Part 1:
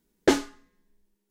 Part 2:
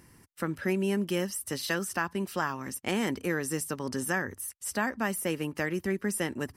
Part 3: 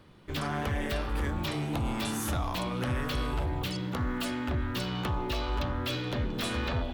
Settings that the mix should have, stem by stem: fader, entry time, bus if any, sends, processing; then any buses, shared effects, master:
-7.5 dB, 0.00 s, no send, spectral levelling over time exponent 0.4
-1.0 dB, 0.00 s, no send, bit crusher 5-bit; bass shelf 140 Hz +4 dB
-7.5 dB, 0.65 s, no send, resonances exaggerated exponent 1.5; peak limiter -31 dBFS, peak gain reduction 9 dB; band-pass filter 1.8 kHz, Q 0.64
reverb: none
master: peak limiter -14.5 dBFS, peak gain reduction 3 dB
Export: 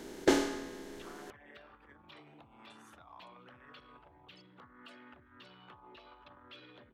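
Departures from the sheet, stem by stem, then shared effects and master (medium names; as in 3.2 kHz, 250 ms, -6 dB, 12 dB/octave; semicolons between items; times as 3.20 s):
stem 2: muted; master: missing peak limiter -14.5 dBFS, peak gain reduction 3 dB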